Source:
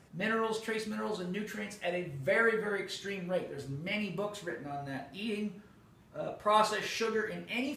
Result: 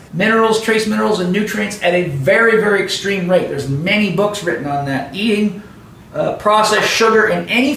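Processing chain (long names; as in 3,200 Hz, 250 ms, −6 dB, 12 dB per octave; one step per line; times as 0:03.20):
0:06.77–0:07.42: flat-topped bell 880 Hz +8.5 dB
boost into a limiter +22.5 dB
level −1.5 dB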